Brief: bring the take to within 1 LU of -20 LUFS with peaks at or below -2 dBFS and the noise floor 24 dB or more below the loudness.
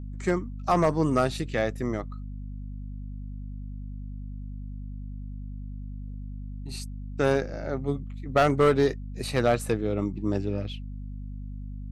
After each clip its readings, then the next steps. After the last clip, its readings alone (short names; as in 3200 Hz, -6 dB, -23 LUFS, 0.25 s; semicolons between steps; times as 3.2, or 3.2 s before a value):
clipped 0.4%; flat tops at -14.0 dBFS; hum 50 Hz; harmonics up to 250 Hz; hum level -34 dBFS; loudness -27.0 LUFS; peak -14.0 dBFS; loudness target -20.0 LUFS
-> clip repair -14 dBFS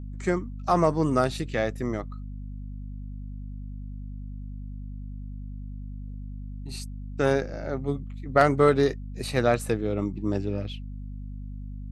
clipped 0.0%; hum 50 Hz; harmonics up to 250 Hz; hum level -34 dBFS
-> de-hum 50 Hz, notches 5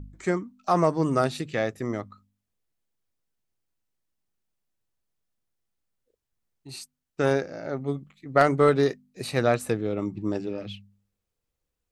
hum none; loudness -26.0 LUFS; peak -5.0 dBFS; loudness target -20.0 LUFS
-> gain +6 dB; limiter -2 dBFS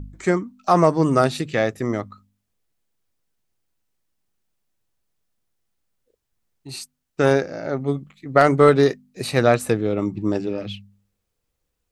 loudness -20.5 LUFS; peak -2.0 dBFS; noise floor -77 dBFS